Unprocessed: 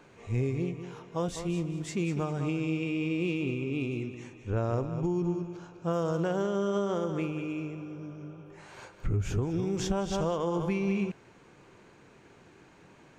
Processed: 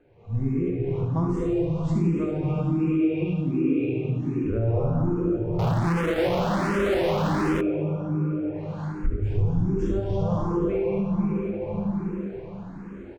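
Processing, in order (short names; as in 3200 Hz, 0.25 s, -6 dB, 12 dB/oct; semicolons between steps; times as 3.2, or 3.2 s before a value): echo 72 ms -4 dB; plate-style reverb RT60 4.3 s, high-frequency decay 0.65×, DRR -1.5 dB; AGC gain up to 13 dB; tilt -2.5 dB/oct; compressor 4:1, threshold -12 dBFS, peak gain reduction 10.5 dB; 5.59–7.61 fuzz box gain 42 dB, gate -39 dBFS; high shelf 4100 Hz -12 dB; de-hum 63.61 Hz, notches 3; endless phaser +1.3 Hz; gain -6 dB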